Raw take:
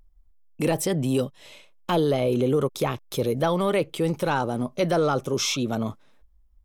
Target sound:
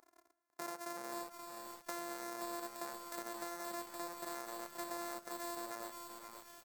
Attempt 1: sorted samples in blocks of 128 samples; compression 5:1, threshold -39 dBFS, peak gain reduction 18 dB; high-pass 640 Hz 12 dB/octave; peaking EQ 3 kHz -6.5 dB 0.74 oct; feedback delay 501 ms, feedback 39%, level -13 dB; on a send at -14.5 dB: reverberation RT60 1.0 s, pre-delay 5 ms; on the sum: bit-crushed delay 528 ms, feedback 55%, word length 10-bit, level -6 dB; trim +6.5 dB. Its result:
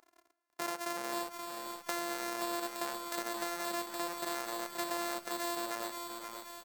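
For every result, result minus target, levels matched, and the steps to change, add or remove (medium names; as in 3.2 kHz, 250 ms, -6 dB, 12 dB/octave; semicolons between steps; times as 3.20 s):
compression: peak gain reduction -6 dB; 4 kHz band +3.0 dB
change: compression 5:1, threshold -46.5 dBFS, peak gain reduction 24 dB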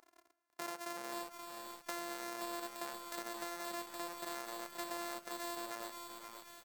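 4 kHz band +3.0 dB
change: peaking EQ 3 kHz -16 dB 0.74 oct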